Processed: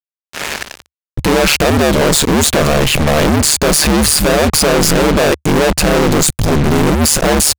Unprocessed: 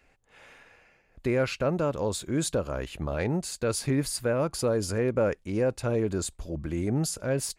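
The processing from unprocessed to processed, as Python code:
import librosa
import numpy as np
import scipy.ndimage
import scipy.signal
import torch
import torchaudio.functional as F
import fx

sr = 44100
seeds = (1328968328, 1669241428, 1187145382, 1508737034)

y = fx.fuzz(x, sr, gain_db=55.0, gate_db=-50.0)
y = y * np.sin(2.0 * np.pi * 74.0 * np.arange(len(y)) / sr)
y = F.gain(torch.from_numpy(y), 6.0).numpy()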